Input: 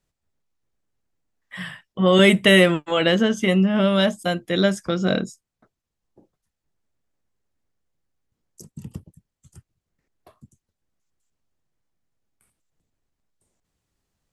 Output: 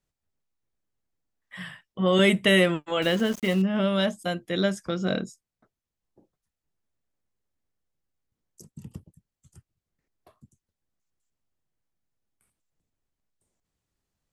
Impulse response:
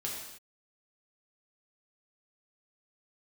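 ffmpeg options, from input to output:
-filter_complex "[0:a]asettb=1/sr,asplit=3[a][b][c];[a]atrim=end=3.024[d];[b]atrim=start=3.02:end=3.62,asetpts=PTS-STARTPTS,afade=t=in:d=0.004:c=qsin,afade=t=out:st=0.596:d=0.004:c=qsin,aeval=exprs='val(0)*gte(abs(val(0)),0.0355)':c=same[e];[c]atrim=start=3.616[f];[d][e]acrossfade=d=0.004:c1=hsin:c2=qsin[g];[g][f]acrossfade=d=0.004:c1=qsin:c2=hsin,volume=-5.5dB"

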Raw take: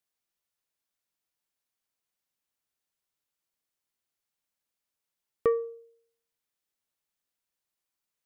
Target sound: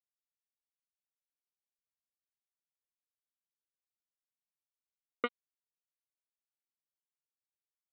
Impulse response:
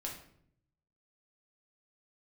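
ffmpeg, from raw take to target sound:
-af "asoftclip=type=tanh:threshold=-17.5dB,aresample=8000,acrusher=bits=2:mix=0:aa=0.5,aresample=44100,asetrate=45938,aresample=44100,volume=12.5dB"

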